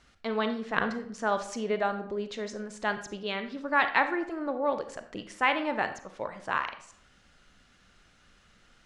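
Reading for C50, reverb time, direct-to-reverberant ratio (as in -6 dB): 10.5 dB, 0.65 s, 8.0 dB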